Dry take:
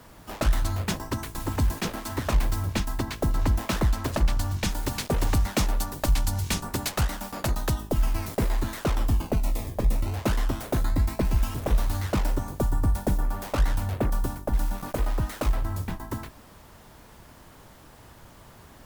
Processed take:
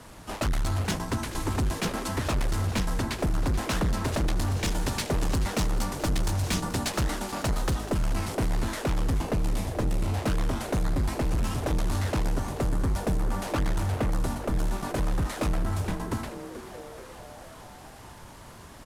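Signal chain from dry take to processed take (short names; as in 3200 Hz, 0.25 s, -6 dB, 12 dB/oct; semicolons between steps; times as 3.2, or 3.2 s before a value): CVSD 64 kbps; hard clip -25.5 dBFS, distortion -8 dB; frequency-shifting echo 0.431 s, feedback 64%, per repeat +140 Hz, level -14 dB; gain +2.5 dB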